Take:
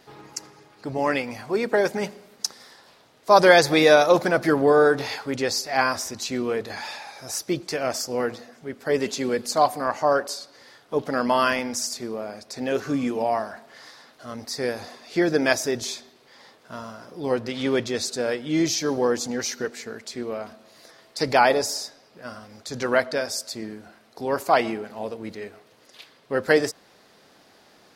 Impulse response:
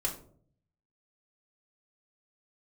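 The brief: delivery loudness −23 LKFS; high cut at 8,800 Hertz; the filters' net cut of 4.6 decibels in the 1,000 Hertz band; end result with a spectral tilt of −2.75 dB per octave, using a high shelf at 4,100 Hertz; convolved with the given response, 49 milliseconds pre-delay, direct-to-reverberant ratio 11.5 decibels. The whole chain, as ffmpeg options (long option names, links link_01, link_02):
-filter_complex "[0:a]lowpass=8800,equalizer=frequency=1000:width_type=o:gain=-7,highshelf=frequency=4100:gain=8,asplit=2[link_01][link_02];[1:a]atrim=start_sample=2205,adelay=49[link_03];[link_02][link_03]afir=irnorm=-1:irlink=0,volume=-15.5dB[link_04];[link_01][link_04]amix=inputs=2:normalize=0,volume=0.5dB"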